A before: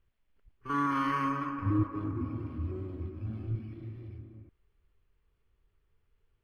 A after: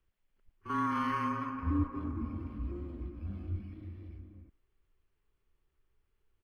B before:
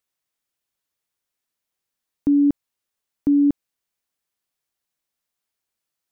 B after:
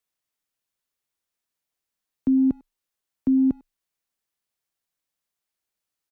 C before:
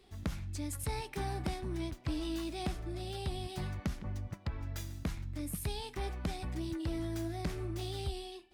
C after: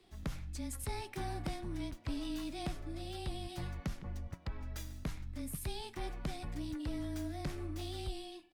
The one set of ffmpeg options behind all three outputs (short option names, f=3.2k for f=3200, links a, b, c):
-filter_complex "[0:a]asplit=2[a][b];[b]adelay=100,highpass=300,lowpass=3.4k,asoftclip=type=hard:threshold=-21.5dB,volume=-23dB[c];[a][c]amix=inputs=2:normalize=0,afreqshift=-22,volume=-2.5dB"